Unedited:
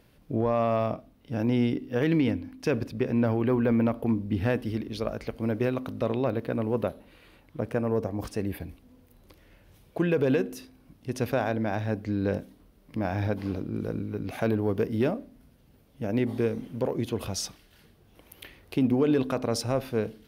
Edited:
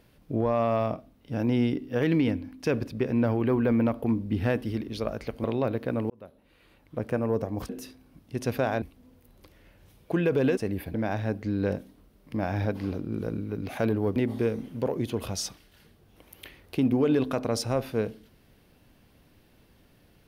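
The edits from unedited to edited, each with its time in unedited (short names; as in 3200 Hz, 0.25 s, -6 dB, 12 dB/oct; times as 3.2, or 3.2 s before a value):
5.44–6.06 cut
6.72–7.69 fade in
8.31–8.68 swap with 10.43–11.56
14.78–16.15 cut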